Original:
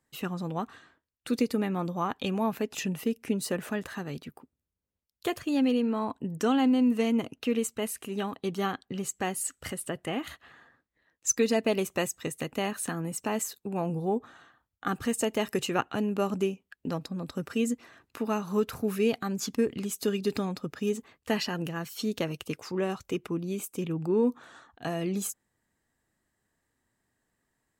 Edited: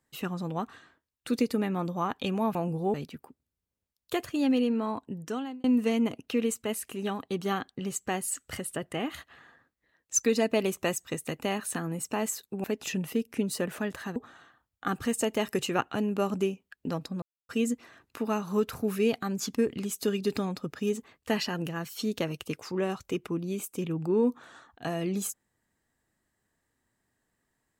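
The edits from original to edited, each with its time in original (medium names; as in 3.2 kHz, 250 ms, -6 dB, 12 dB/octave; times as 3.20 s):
2.55–4.07 s: swap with 13.77–14.16 s
5.68–6.77 s: fade out equal-power
17.22–17.49 s: mute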